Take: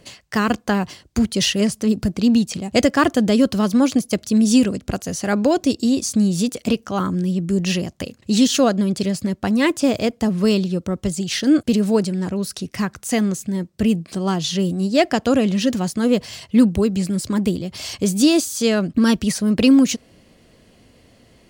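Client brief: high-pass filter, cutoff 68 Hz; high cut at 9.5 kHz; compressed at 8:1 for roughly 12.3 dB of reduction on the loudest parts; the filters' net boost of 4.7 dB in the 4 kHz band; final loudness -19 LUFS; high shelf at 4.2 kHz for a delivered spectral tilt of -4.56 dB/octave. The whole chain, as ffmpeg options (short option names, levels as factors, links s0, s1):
-af "highpass=68,lowpass=9500,equalizer=f=4000:t=o:g=8.5,highshelf=f=4200:g=-4,acompressor=threshold=0.0794:ratio=8,volume=2.37"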